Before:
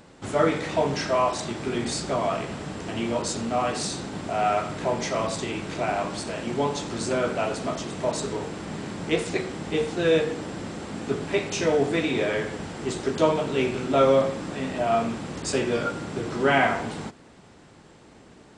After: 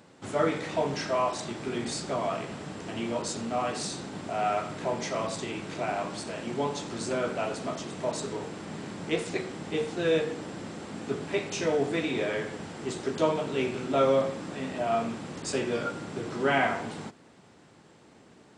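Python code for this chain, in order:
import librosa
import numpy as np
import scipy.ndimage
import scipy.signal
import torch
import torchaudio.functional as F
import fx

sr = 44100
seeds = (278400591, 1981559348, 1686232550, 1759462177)

y = scipy.signal.sosfilt(scipy.signal.butter(2, 96.0, 'highpass', fs=sr, output='sos'), x)
y = y * 10.0 ** (-4.5 / 20.0)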